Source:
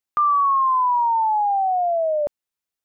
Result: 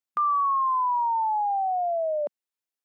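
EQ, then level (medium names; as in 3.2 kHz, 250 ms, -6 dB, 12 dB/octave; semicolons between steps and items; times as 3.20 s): brick-wall FIR high-pass 190 Hz; -5.5 dB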